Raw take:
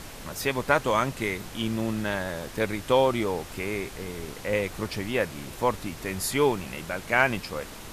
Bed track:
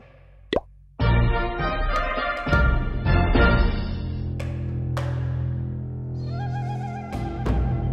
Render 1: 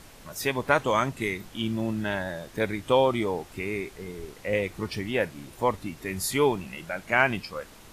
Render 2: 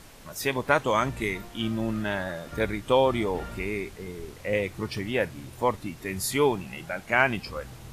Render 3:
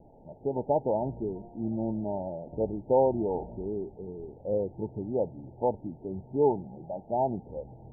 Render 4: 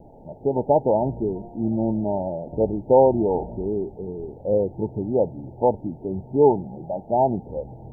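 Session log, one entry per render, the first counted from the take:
noise print and reduce 8 dB
add bed track -21.5 dB
Chebyshev low-pass 910 Hz, order 10; low shelf 110 Hz -8.5 dB
gain +8 dB

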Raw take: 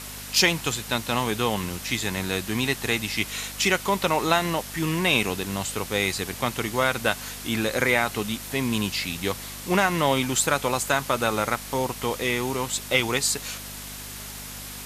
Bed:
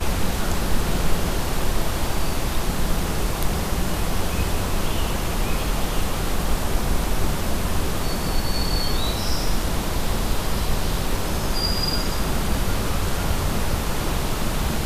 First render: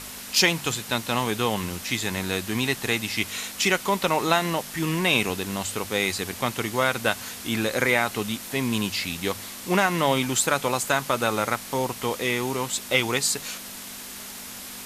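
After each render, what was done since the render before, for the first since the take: de-hum 50 Hz, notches 3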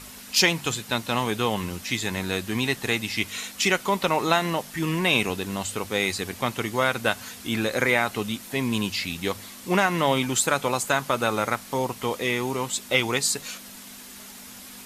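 denoiser 6 dB, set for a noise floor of -39 dBFS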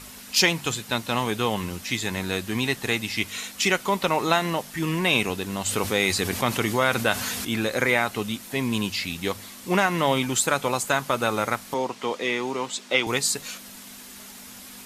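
5.66–7.45 fast leveller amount 50%; 11.74–13.07 three-band isolator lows -17 dB, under 180 Hz, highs -18 dB, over 7500 Hz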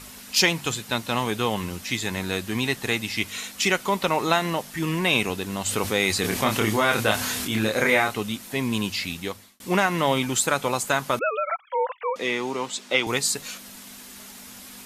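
6.21–8.14 doubler 28 ms -3.5 dB; 9.1–9.6 fade out; 11.19–12.16 sine-wave speech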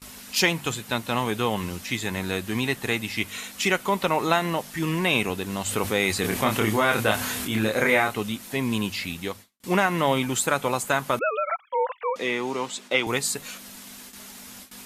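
gate with hold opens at -32 dBFS; dynamic EQ 5200 Hz, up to -5 dB, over -39 dBFS, Q 1.1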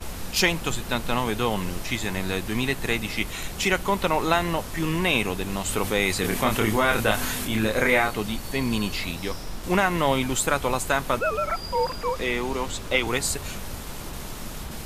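add bed -12.5 dB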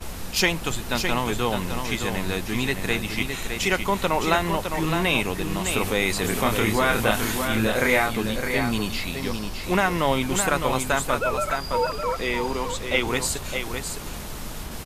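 echo 0.611 s -6.5 dB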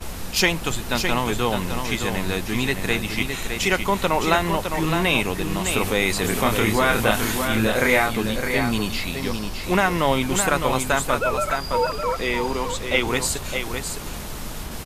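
gain +2 dB

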